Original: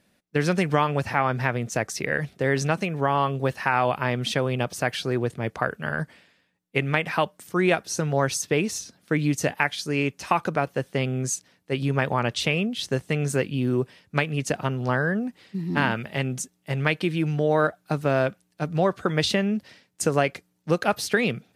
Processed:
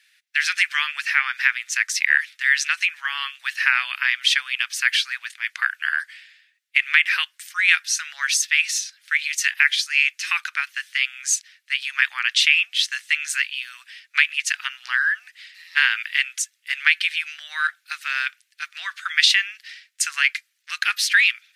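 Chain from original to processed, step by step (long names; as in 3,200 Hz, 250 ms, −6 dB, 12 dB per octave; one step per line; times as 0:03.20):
Butterworth high-pass 1,700 Hz 36 dB per octave
high-shelf EQ 5,900 Hz −11 dB
boost into a limiter +15 dB
level −1 dB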